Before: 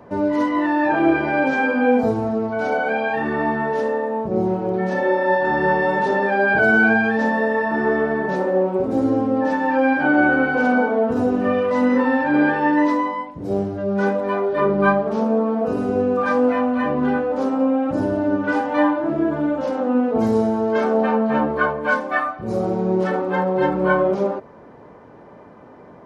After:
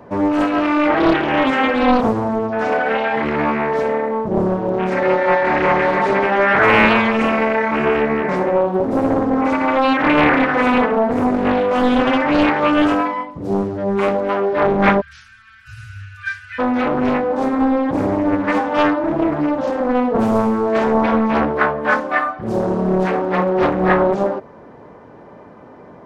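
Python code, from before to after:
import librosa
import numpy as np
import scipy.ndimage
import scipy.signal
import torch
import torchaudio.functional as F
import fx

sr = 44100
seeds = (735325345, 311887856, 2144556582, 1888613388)

y = fx.cheby1_bandstop(x, sr, low_hz=120.0, high_hz=1500.0, order=5, at=(15.0, 16.58), fade=0.02)
y = fx.doppler_dist(y, sr, depth_ms=0.84)
y = F.gain(torch.from_numpy(y), 3.0).numpy()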